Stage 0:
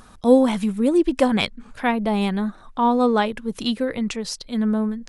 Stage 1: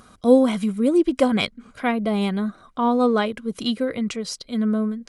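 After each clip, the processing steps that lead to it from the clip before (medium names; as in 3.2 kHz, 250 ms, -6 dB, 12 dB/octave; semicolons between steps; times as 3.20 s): comb of notches 880 Hz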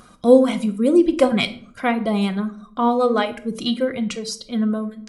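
reverb removal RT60 0.74 s; simulated room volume 680 m³, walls furnished, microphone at 0.85 m; trim +2 dB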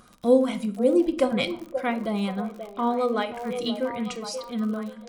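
crackle 53 per s -28 dBFS; repeats whose band climbs or falls 531 ms, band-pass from 550 Hz, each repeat 0.7 oct, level -6 dB; trim -6.5 dB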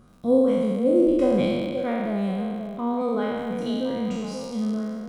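spectral sustain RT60 2.09 s; tilt shelf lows +7 dB, about 670 Hz; trim -5.5 dB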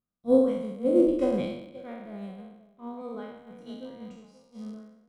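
upward expansion 2.5:1, over -41 dBFS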